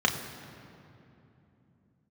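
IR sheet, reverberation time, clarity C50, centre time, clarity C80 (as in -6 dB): 3.0 s, 8.0 dB, 37 ms, 9.0 dB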